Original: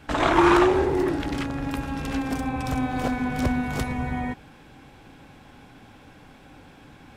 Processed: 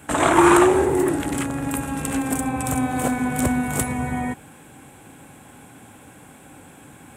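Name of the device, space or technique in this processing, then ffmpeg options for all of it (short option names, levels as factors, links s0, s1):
budget condenser microphone: -af "highpass=85,highshelf=f=6500:t=q:w=3:g=10,volume=1.5"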